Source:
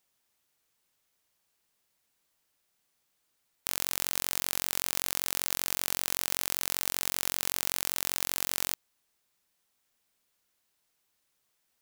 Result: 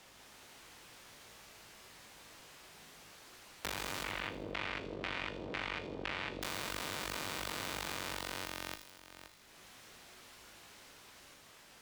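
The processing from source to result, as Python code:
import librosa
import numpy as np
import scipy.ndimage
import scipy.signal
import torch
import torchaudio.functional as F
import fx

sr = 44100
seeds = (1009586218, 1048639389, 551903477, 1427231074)

y = fx.high_shelf(x, sr, hz=11000.0, db=-10.5)
y = fx.echo_pitch(y, sr, ms=190, semitones=1, count=3, db_per_echo=-3.0)
y = fx.high_shelf(y, sr, hz=5300.0, db=-10.0)
y = fx.tube_stage(y, sr, drive_db=21.0, bias=0.65)
y = y + 10.0 ** (-21.5 / 20.0) * np.pad(y, (int(522 * sr / 1000.0), 0))[:len(y)]
y = fx.filter_lfo_lowpass(y, sr, shape='square', hz=2.0, low_hz=450.0, high_hz=2400.0, q=1.6, at=(4.04, 6.42))
y = fx.comb_fb(y, sr, f0_hz=53.0, decay_s=0.33, harmonics='all', damping=0.0, mix_pct=70)
y = fx.echo_wet_highpass(y, sr, ms=80, feedback_pct=51, hz=4300.0, wet_db=-7.5)
y = fx.band_squash(y, sr, depth_pct=70)
y = y * librosa.db_to_amplitude(12.0)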